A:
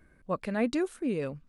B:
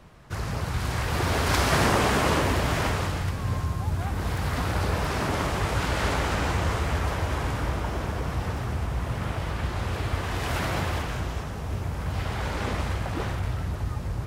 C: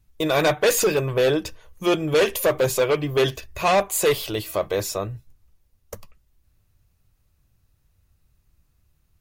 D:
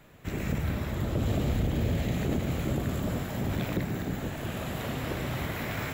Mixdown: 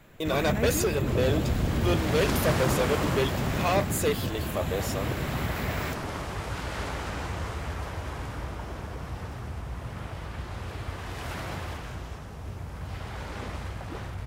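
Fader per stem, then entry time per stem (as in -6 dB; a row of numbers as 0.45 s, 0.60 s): -4.5 dB, -7.5 dB, -7.5 dB, +0.5 dB; 0.00 s, 0.75 s, 0.00 s, 0.00 s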